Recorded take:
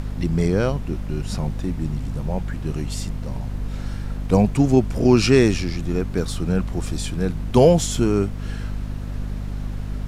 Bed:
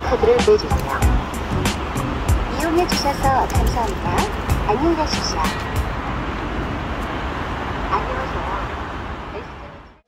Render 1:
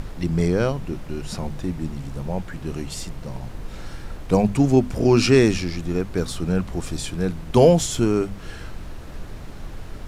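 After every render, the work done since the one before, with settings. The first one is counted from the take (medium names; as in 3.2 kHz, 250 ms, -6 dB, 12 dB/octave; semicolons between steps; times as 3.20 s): hum notches 50/100/150/200/250 Hz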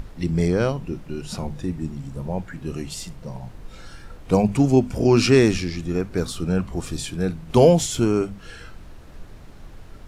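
noise print and reduce 7 dB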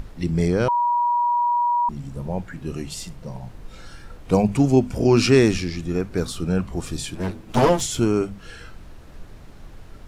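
0.68–1.89 s: bleep 961 Hz -17 dBFS; 7.15–7.81 s: comb filter that takes the minimum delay 9.2 ms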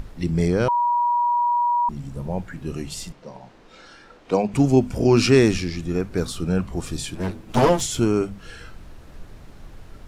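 3.12–4.54 s: three-band isolator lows -19 dB, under 220 Hz, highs -18 dB, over 6.8 kHz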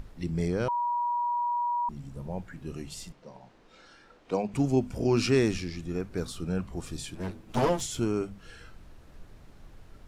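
trim -8.5 dB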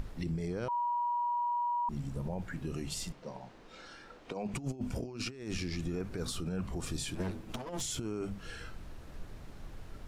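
compressor with a negative ratio -31 dBFS, ratio -0.5; peak limiter -27.5 dBFS, peak gain reduction 12 dB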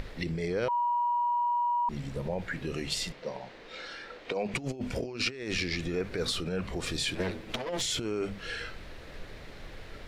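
graphic EQ 500/2000/4000 Hz +9/+11/+9 dB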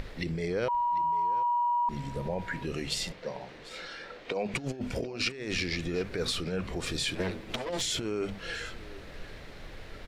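delay 746 ms -18 dB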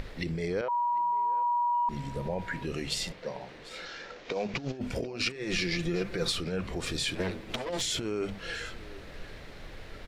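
0.61–1.74 s: band-pass filter 880 Hz, Q 0.94; 3.85–4.78 s: CVSD coder 32 kbps; 5.35–6.32 s: comb 5.8 ms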